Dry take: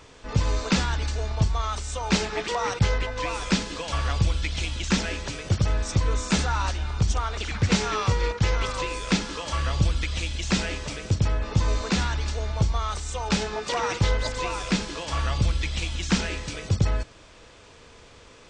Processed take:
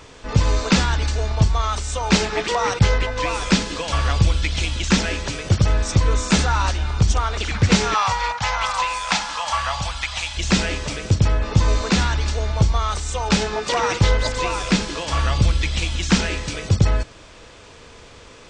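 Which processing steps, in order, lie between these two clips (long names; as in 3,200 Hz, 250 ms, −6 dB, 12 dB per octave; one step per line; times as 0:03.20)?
0:07.94–0:10.37: low shelf with overshoot 560 Hz −12.5 dB, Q 3
level +6 dB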